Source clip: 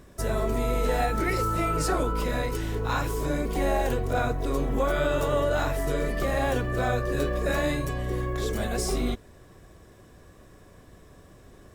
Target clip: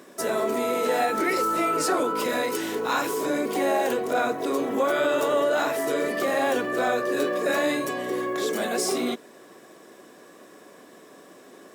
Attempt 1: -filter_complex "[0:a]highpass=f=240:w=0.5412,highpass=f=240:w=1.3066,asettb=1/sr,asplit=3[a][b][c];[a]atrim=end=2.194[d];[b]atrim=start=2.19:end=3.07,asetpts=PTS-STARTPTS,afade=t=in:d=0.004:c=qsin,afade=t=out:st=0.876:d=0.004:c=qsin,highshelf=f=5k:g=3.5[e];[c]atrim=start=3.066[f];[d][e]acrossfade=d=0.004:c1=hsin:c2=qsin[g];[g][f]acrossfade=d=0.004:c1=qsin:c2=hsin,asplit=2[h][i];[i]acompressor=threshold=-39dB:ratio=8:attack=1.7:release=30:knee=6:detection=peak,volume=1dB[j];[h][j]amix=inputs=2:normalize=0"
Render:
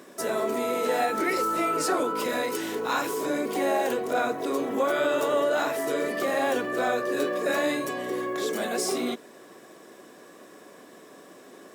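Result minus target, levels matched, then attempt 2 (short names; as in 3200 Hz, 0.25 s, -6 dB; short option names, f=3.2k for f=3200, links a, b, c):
compressor: peak gain reduction +7 dB
-filter_complex "[0:a]highpass=f=240:w=0.5412,highpass=f=240:w=1.3066,asettb=1/sr,asplit=3[a][b][c];[a]atrim=end=2.194[d];[b]atrim=start=2.19:end=3.07,asetpts=PTS-STARTPTS,afade=t=in:d=0.004:c=qsin,afade=t=out:st=0.876:d=0.004:c=qsin,highshelf=f=5k:g=3.5[e];[c]atrim=start=3.066[f];[d][e]acrossfade=d=0.004:c1=hsin:c2=qsin[g];[g][f]acrossfade=d=0.004:c1=qsin:c2=hsin,asplit=2[h][i];[i]acompressor=threshold=-31dB:ratio=8:attack=1.7:release=30:knee=6:detection=peak,volume=1dB[j];[h][j]amix=inputs=2:normalize=0"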